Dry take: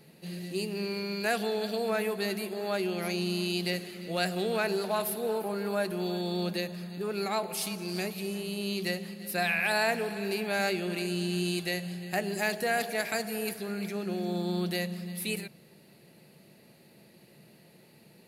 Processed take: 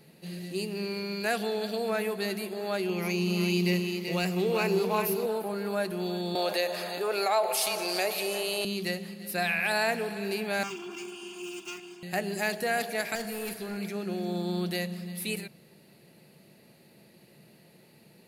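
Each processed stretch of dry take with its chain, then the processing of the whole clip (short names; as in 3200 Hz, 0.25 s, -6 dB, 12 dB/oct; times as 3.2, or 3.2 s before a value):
2.89–5.26 ripple EQ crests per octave 0.78, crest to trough 9 dB + hard clip -17.5 dBFS + echo 0.384 s -5.5 dB
6.35–8.65 resonant high-pass 610 Hz, resonance Q 2 + fast leveller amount 50%
10.63–12.03 minimum comb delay 2.9 ms + HPF 140 Hz 24 dB/oct + fixed phaser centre 2800 Hz, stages 8
13.15–13.77 hard clip -30.5 dBFS + flutter echo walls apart 7.4 m, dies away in 0.24 s
whole clip: dry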